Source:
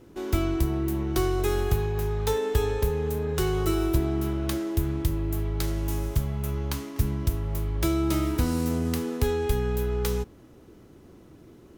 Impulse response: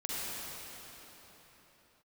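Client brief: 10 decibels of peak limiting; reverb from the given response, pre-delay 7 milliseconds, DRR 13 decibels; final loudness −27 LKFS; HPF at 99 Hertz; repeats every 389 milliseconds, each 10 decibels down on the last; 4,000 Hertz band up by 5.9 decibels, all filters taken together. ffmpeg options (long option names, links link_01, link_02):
-filter_complex "[0:a]highpass=99,equalizer=frequency=4000:width_type=o:gain=7.5,alimiter=limit=-21.5dB:level=0:latency=1,aecho=1:1:389|778|1167|1556:0.316|0.101|0.0324|0.0104,asplit=2[link_01][link_02];[1:a]atrim=start_sample=2205,adelay=7[link_03];[link_02][link_03]afir=irnorm=-1:irlink=0,volume=-18.5dB[link_04];[link_01][link_04]amix=inputs=2:normalize=0,volume=3.5dB"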